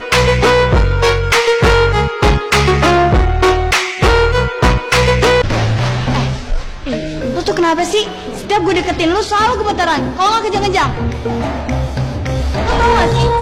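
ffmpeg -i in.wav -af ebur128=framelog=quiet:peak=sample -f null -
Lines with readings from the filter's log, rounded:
Integrated loudness:
  I:         -13.5 LUFS
  Threshold: -23.6 LUFS
Loudness range:
  LRA:         4.4 LU
  Threshold: -33.8 LUFS
  LRA low:   -16.1 LUFS
  LRA high:  -11.8 LUFS
Sample peak:
  Peak:       -6.5 dBFS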